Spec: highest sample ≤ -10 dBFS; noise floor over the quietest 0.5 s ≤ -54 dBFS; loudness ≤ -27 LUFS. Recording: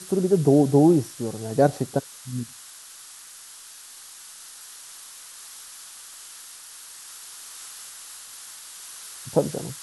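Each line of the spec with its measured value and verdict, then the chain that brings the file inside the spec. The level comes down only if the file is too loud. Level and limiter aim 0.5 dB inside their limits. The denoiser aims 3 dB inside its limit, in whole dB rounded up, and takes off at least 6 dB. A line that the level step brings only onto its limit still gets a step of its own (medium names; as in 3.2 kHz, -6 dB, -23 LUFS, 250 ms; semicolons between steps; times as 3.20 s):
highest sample -5.0 dBFS: fail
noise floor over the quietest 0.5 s -44 dBFS: fail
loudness -22.0 LUFS: fail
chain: noise reduction 8 dB, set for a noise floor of -44 dBFS; trim -5.5 dB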